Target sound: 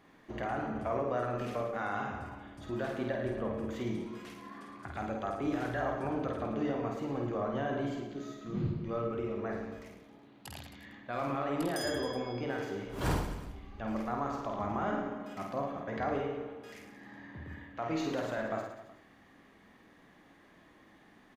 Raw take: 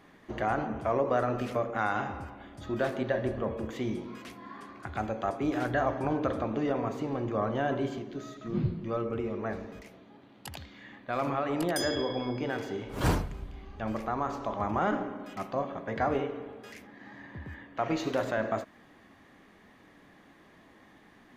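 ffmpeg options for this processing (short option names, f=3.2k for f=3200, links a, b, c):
-filter_complex "[0:a]alimiter=limit=-19dB:level=0:latency=1:release=185,asplit=2[a][b];[b]aecho=0:1:50|110|182|268.4|372.1:0.631|0.398|0.251|0.158|0.1[c];[a][c]amix=inputs=2:normalize=0,volume=-5dB"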